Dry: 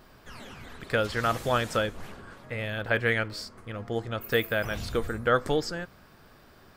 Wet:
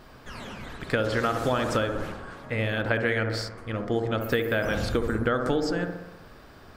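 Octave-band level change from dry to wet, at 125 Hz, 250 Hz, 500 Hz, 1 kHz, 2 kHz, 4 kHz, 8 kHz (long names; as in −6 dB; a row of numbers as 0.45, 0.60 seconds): +3.5, +5.5, +2.0, +0.5, +0.5, 0.0, 0.0 decibels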